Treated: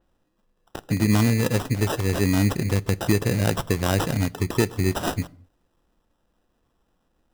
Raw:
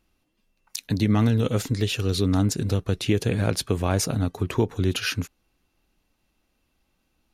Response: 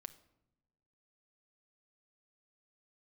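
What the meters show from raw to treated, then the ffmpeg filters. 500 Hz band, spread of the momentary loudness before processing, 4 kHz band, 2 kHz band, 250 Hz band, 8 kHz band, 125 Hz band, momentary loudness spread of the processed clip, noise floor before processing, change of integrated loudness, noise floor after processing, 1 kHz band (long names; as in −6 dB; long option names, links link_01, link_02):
+1.0 dB, 7 LU, −2.0 dB, +3.5 dB, +1.5 dB, 0.0 dB, +1.0 dB, 8 LU, −73 dBFS, +1.0 dB, −71 dBFS, +3.5 dB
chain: -filter_complex "[0:a]acrusher=samples=20:mix=1:aa=0.000001,asplit=2[link_01][link_02];[1:a]atrim=start_sample=2205,afade=type=out:start_time=0.31:duration=0.01,atrim=end_sample=14112[link_03];[link_02][link_03]afir=irnorm=-1:irlink=0,volume=0.5dB[link_04];[link_01][link_04]amix=inputs=2:normalize=0,adynamicequalizer=threshold=0.01:dfrequency=4500:dqfactor=0.7:tfrequency=4500:tqfactor=0.7:attack=5:release=100:ratio=0.375:range=1.5:mode=boostabove:tftype=highshelf,volume=-2.5dB"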